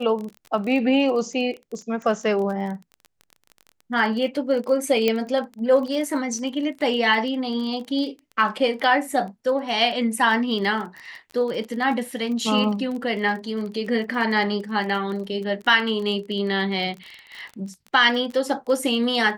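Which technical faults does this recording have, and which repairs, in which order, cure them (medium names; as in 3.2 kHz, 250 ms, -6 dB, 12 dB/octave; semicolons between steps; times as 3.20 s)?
crackle 26 per s -30 dBFS
5.08 s: pop -8 dBFS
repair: de-click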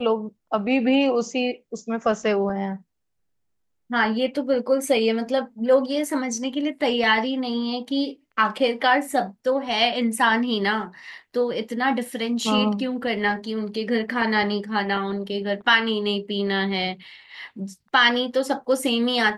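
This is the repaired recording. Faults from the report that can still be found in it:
nothing left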